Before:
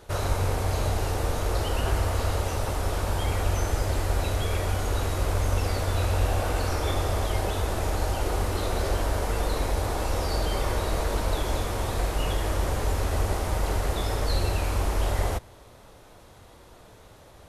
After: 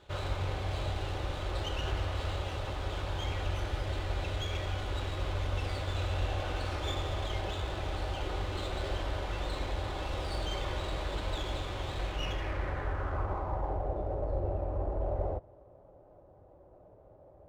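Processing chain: comb of notches 230 Hz; low-pass sweep 3.5 kHz -> 630 Hz, 12.02–14.00 s; sliding maximum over 3 samples; trim -7.5 dB

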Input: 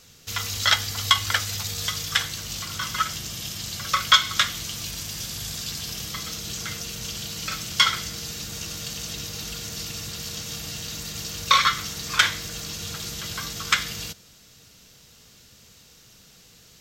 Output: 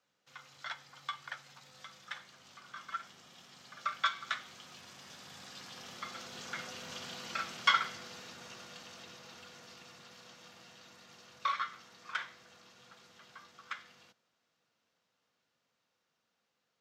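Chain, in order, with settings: Doppler pass-by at 7.06 s, 7 m/s, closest 7 m; frequency shift +38 Hz; band-pass filter 1 kHz, Q 0.98

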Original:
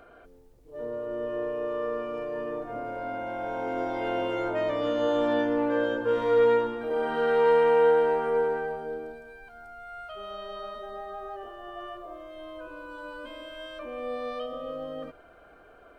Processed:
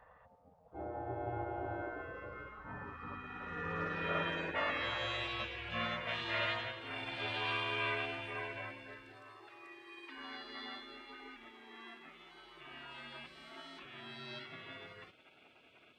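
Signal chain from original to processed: ring modulator 360 Hz; band-pass sweep 280 Hz -> 2 kHz, 1.78–5.31 s; spectral gate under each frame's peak -20 dB weak; trim +18 dB

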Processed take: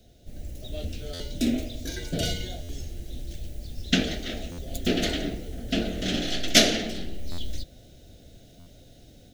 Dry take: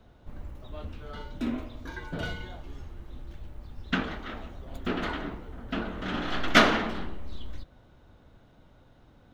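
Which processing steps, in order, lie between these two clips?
FFT filter 700 Hz 0 dB, 1 kHz -27 dB, 1.7 kHz -5 dB, 6.1 kHz +15 dB; level rider gain up to 6 dB; buffer glitch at 1.13/2.62/4.51/7.31/8.59 s, samples 512, times 5

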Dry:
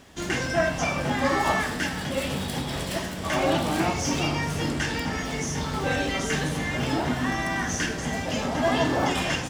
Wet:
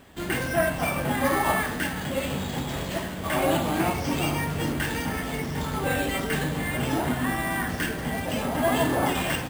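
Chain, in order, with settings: median filter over 5 samples; careless resampling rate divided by 4×, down filtered, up hold

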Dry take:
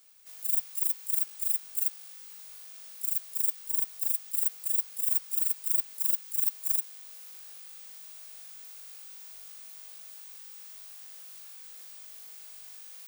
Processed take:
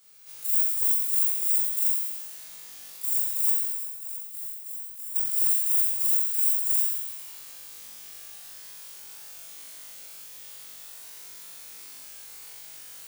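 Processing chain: 3.70–5.16 s: level held to a coarse grid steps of 20 dB; flutter echo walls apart 3.8 m, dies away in 1.2 s; hard clipper -12 dBFS, distortion -35 dB

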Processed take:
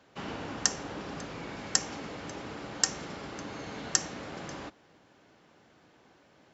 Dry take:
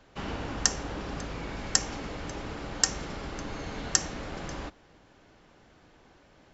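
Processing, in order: high-pass 120 Hz 12 dB/octave; trim -2 dB

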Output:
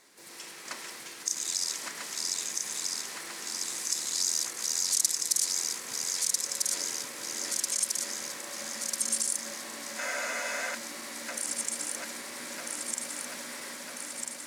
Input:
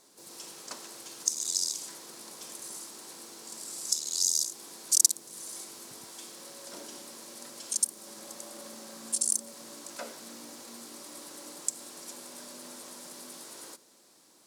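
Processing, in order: backward echo that repeats 648 ms, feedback 79%, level -1.5 dB; in parallel at +1 dB: peak limiter -17.5 dBFS, peak gain reduction 11 dB; on the sum: peaking EQ 2 kHz +13.5 dB 0.99 oct; spectral freeze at 10.00 s, 0.72 s; trim -8 dB

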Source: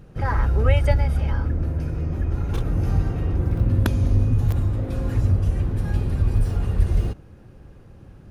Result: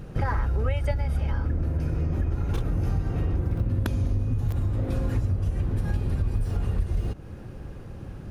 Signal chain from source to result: compression 6:1, threshold -29 dBFS, peak gain reduction 16.5 dB; trim +6.5 dB

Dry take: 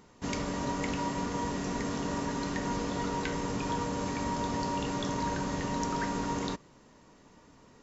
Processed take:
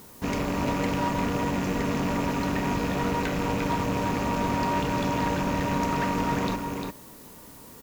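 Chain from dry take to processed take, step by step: rattle on loud lows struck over -37 dBFS, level -32 dBFS; treble shelf 3.6 kHz -9.5 dB; added noise blue -58 dBFS; on a send: delay 350 ms -6 dB; on the sum: one-sided clip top -35 dBFS; trim +7.5 dB

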